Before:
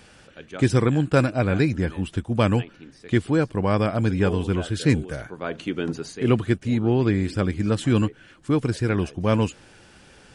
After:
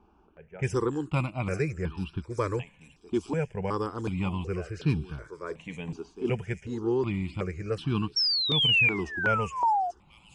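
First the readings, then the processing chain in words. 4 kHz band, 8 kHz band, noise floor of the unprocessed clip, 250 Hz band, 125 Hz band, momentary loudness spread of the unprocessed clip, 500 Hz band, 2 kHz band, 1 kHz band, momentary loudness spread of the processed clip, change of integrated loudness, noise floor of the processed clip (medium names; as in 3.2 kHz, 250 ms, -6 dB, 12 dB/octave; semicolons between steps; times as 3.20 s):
+9.0 dB, -9.5 dB, -52 dBFS, -10.0 dB, -8.5 dB, 9 LU, -7.0 dB, +1.0 dB, +1.0 dB, 15 LU, -5.0 dB, -61 dBFS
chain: level-controlled noise filter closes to 1.1 kHz, open at -16 dBFS; rippled EQ curve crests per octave 0.77, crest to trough 7 dB; feedback echo behind a high-pass 837 ms, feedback 55%, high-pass 5 kHz, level -5 dB; painted sound fall, 8.16–9.91 s, 680–5600 Hz -16 dBFS; stepped phaser 2.7 Hz 520–2000 Hz; trim -5 dB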